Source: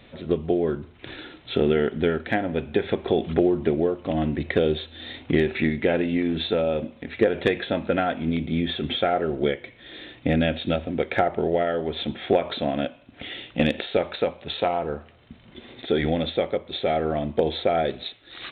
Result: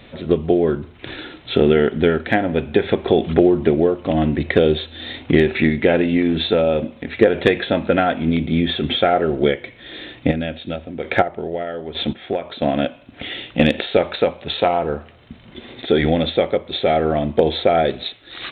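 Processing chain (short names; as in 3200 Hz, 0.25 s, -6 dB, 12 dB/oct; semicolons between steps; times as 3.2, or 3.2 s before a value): 10.13–12.62 chopper 1.1 Hz, depth 65%, duty 20%; gain +6.5 dB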